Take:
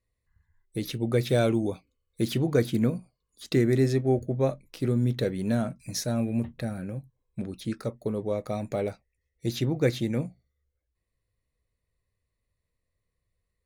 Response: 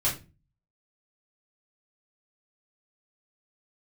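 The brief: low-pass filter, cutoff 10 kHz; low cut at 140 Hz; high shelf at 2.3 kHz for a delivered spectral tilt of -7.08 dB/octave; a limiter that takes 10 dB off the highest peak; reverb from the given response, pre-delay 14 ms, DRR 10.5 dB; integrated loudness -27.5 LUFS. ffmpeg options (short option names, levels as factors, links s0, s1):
-filter_complex "[0:a]highpass=140,lowpass=10000,highshelf=f=2300:g=-5,alimiter=limit=0.0891:level=0:latency=1,asplit=2[s0][s1];[1:a]atrim=start_sample=2205,adelay=14[s2];[s1][s2]afir=irnorm=-1:irlink=0,volume=0.106[s3];[s0][s3]amix=inputs=2:normalize=0,volume=1.68"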